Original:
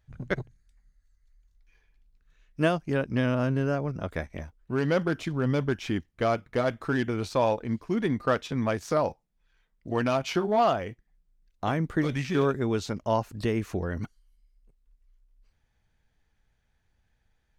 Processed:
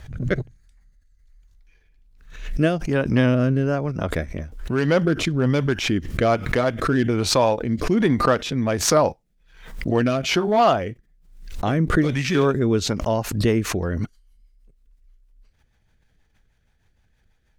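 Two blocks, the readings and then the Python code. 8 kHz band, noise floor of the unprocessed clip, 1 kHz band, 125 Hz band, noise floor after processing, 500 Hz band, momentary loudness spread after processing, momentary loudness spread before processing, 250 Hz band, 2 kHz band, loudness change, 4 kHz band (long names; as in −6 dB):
+17.0 dB, −73 dBFS, +5.5 dB, +7.5 dB, −64 dBFS, +6.0 dB, 9 LU, 8 LU, +7.0 dB, +6.5 dB, +7.0 dB, +11.5 dB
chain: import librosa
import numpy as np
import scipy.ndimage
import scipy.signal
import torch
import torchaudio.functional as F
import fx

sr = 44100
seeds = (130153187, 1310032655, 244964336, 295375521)

y = fx.rotary_switch(x, sr, hz=1.2, then_hz=6.3, switch_at_s=12.73)
y = fx.pre_swell(y, sr, db_per_s=77.0)
y = F.gain(torch.from_numpy(y), 8.0).numpy()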